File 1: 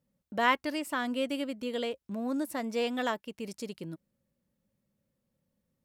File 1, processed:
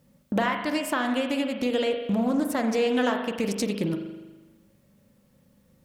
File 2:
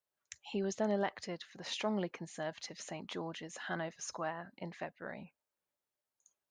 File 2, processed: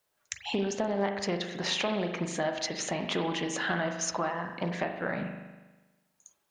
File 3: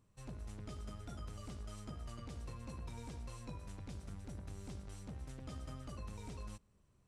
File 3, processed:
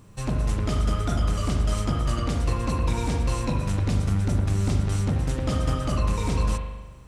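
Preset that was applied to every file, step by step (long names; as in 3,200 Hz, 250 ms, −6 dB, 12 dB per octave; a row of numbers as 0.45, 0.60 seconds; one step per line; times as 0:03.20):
downward compressor 10 to 1, threshold −40 dBFS
spring reverb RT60 1.2 s, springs 40 ms, chirp 60 ms, DRR 4.5 dB
highs frequency-modulated by the lows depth 0.17 ms
normalise the peak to −12 dBFS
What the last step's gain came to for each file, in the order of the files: +16.5, +13.0, +21.5 decibels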